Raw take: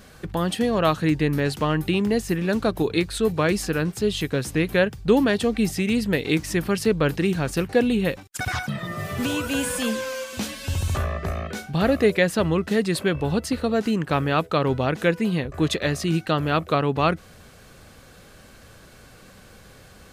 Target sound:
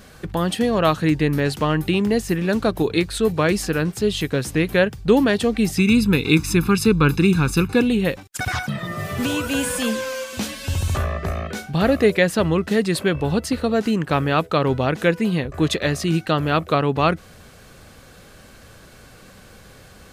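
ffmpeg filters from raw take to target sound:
ffmpeg -i in.wav -filter_complex "[0:a]asettb=1/sr,asplit=3[link_01][link_02][link_03];[link_01]atrim=end=5.774[link_04];[link_02]atrim=start=5.77:end=7.82,asetpts=PTS-STARTPTS,afade=type=in:duration=0.004:curve=qsin,afade=type=out:start_time=2.046:duration=0.004:curve=qsin,aecho=1:1:0.8:0.94,atrim=end_sample=90405[link_05];[link_03]atrim=start=7.816[link_06];[link_04][link_05]acrossfade=duration=0.004:curve1=hsin:curve2=qsin[link_07];[link_07][link_06]acrossfade=duration=0.004:curve1=qsin:curve2=hsin,volume=2.5dB" out.wav

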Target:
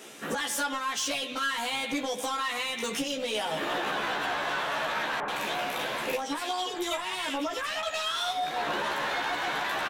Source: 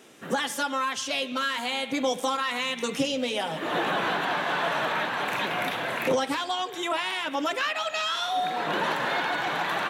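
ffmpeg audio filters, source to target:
ffmpeg -i in.wav -filter_complex "[0:a]acompressor=threshold=-30dB:ratio=12,highpass=frequency=230:poles=1,highshelf=frequency=4400:gain=4,asoftclip=type=tanh:threshold=-30.5dB,asplit=2[link_01][link_02];[link_02]adelay=14,volume=-3dB[link_03];[link_01][link_03]amix=inputs=2:normalize=0,asettb=1/sr,asplit=3[link_04][link_05][link_06];[link_04]atrim=end=5.204[link_07];[link_05]atrim=start=5.2:end=7.83,asetpts=PTS-STARTPTS,afade=type=in:duration=0.004:curve=qsin,afade=type=out:start_time=2.626:duration=0.004:curve=qsin,acrossover=split=1800[link_08][link_09];[link_09]adelay=80[link_10];[link_08][link_10]amix=inputs=2:normalize=0,atrim=end_sample=115983[link_11];[link_06]atrim=start=7.826[link_12];[link_07][link_11]acrossfade=duration=0.004:curve1=hsin:curve2=qsin[link_13];[link_13][link_12]acrossfade=duration=0.004:curve1=qsin:curve2=hsin,volume=4dB" out.wav

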